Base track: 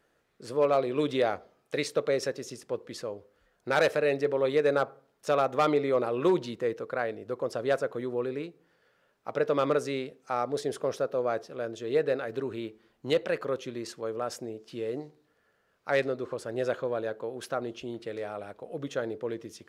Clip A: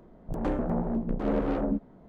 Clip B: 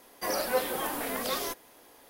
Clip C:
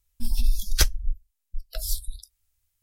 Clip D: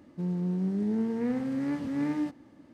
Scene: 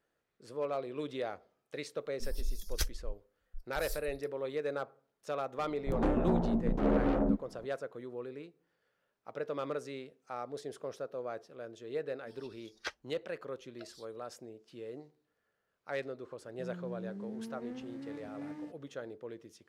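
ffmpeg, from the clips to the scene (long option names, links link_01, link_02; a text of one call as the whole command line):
ffmpeg -i bed.wav -i cue0.wav -i cue1.wav -i cue2.wav -i cue3.wav -filter_complex "[3:a]asplit=2[link_01][link_02];[0:a]volume=-11dB[link_03];[link_02]highpass=480,lowpass=2300[link_04];[link_01]atrim=end=2.82,asetpts=PTS-STARTPTS,volume=-13.5dB,afade=type=in:duration=0.004:curve=hsin,afade=type=out:start_time=2.816:duration=0.004:curve=hsin,adelay=2000[link_05];[1:a]atrim=end=2.08,asetpts=PTS-STARTPTS,volume=-1dB,afade=type=in:duration=0.004:curve=hsin,afade=type=out:start_time=2.076:duration=0.004:curve=hsin,adelay=5580[link_06];[link_04]atrim=end=2.82,asetpts=PTS-STARTPTS,volume=-8dB,afade=type=in:duration=0.004:curve=hsin,afade=type=out:start_time=2.816:duration=0.004:curve=hsin,adelay=12060[link_07];[4:a]atrim=end=2.73,asetpts=PTS-STARTPTS,volume=-14dB,afade=type=in:duration=0.004:curve=hsin,afade=type=out:start_time=2.726:duration=0.004:curve=hsin,adelay=16410[link_08];[link_03][link_05][link_06][link_07][link_08]amix=inputs=5:normalize=0" out.wav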